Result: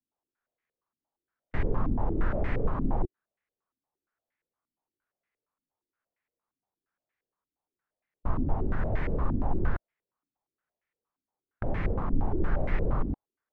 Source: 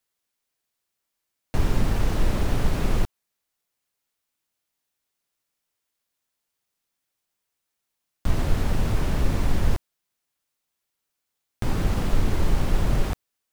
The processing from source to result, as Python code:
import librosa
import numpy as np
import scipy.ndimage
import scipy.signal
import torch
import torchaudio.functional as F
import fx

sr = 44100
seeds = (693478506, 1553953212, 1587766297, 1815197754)

y = fx.formant_shift(x, sr, semitones=-6)
y = fx.filter_held_lowpass(y, sr, hz=8.6, low_hz=270.0, high_hz=2000.0)
y = y * librosa.db_to_amplitude(-5.5)